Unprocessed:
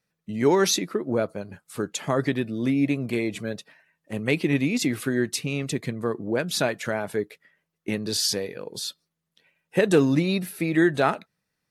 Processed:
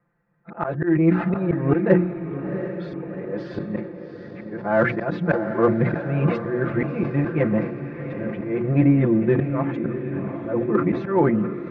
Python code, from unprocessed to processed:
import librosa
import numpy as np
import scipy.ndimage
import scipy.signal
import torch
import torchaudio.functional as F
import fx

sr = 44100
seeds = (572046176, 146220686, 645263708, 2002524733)

p1 = np.flip(x).copy()
p2 = scipy.signal.sosfilt(scipy.signal.butter(4, 1600.0, 'lowpass', fs=sr, output='sos'), p1)
p3 = fx.hum_notches(p2, sr, base_hz=60, count=6)
p4 = p3 + 0.82 * np.pad(p3, (int(5.8 * sr / 1000.0), 0))[:len(p3)]
p5 = fx.auto_swell(p4, sr, attack_ms=343.0)
p6 = 10.0 ** (-26.0 / 20.0) * np.tanh(p5 / 10.0 ** (-26.0 / 20.0))
p7 = p5 + (p6 * 10.0 ** (-11.0 / 20.0))
p8 = fx.echo_diffused(p7, sr, ms=733, feedback_pct=57, wet_db=-9.0)
p9 = fx.sustainer(p8, sr, db_per_s=91.0)
y = p9 * 10.0 ** (7.0 / 20.0)